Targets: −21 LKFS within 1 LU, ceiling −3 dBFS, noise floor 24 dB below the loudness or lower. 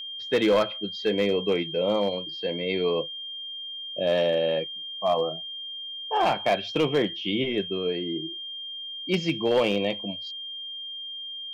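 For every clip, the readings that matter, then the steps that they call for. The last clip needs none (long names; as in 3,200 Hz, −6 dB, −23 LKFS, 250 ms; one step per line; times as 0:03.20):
share of clipped samples 0.6%; peaks flattened at −15.5 dBFS; interfering tone 3,200 Hz; level of the tone −34 dBFS; integrated loudness −27.0 LKFS; sample peak −15.5 dBFS; target loudness −21.0 LKFS
→ clipped peaks rebuilt −15.5 dBFS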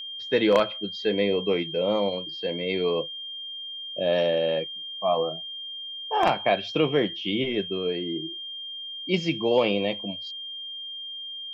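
share of clipped samples 0.0%; interfering tone 3,200 Hz; level of the tone −34 dBFS
→ notch filter 3,200 Hz, Q 30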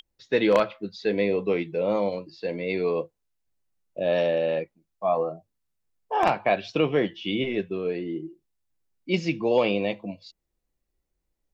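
interfering tone none found; integrated loudness −26.0 LKFS; sample peak −6.5 dBFS; target loudness −21.0 LKFS
→ level +5 dB
brickwall limiter −3 dBFS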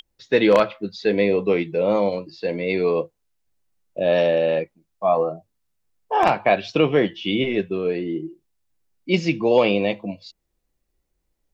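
integrated loudness −21.0 LKFS; sample peak −3.0 dBFS; background noise floor −75 dBFS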